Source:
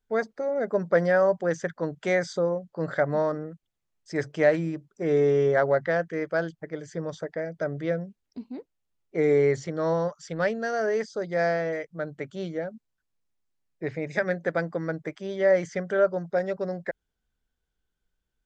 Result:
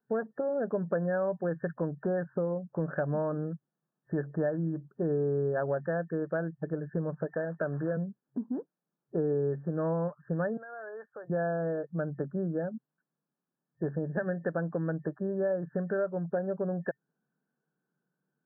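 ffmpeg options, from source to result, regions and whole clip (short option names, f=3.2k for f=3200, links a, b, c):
-filter_complex "[0:a]asettb=1/sr,asplit=3[a][b][c];[a]atrim=end=7.284[d];[b]atrim=start=7.28:end=7.97,asetpts=PTS-STARTPTS,afade=t=in:d=0.004:c=qsin,afade=t=out:st=0.686:d=0.004:c=qsin,acrusher=bits=4:mode=log:mix=0:aa=0.000001,highpass=f=99:w=0.5412,highpass=f=99:w=1.3066,tiltshelf=f=640:g=-5[e];[c]atrim=start=7.966[f];[d][e]acrossfade=d=0.004:c1=hsin:c2=qsin[g];[g][f]acrossfade=d=0.004:c1=qsin:c2=hsin,asettb=1/sr,asplit=3[h][i][j];[h]atrim=end=10.574[k];[i]atrim=start=10.57:end=11.3,asetpts=PTS-STARTPTS,afade=t=in:d=0.004:c=qsin,afade=t=out:st=0.726:d=0.004:c=qsin,highpass=830,acompressor=threshold=-43dB:ratio=5:attack=3.2:release=140:knee=1:detection=peak[l];[j]atrim=start=11.296[m];[k][l]acrossfade=d=0.004:c1=hsin:c2=qsin[n];[n][m]acrossfade=d=0.004:c1=qsin:c2=hsin,aemphasis=mode=reproduction:type=bsi,afftfilt=real='re*between(b*sr/4096,130,1800)':imag='im*between(b*sr/4096,130,1800)':win_size=4096:overlap=0.75,acompressor=threshold=-32dB:ratio=4,volume=2.5dB"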